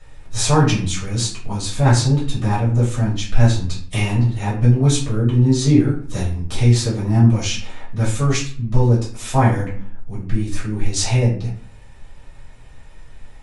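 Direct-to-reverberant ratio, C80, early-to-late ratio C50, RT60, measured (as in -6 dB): -8.5 dB, 11.5 dB, 6.0 dB, 0.50 s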